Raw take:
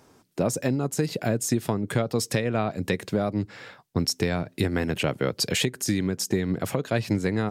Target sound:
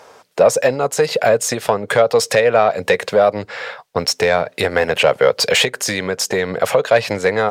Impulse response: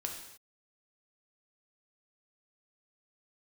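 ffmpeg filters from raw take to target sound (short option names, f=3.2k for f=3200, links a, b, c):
-filter_complex "[0:a]acontrast=49,asplit=2[a][b];[b]highpass=f=720:p=1,volume=12dB,asoftclip=type=tanh:threshold=-5.5dB[c];[a][c]amix=inputs=2:normalize=0,lowpass=f=3.1k:p=1,volume=-6dB,lowshelf=f=400:t=q:w=3:g=-6.5,volume=3.5dB"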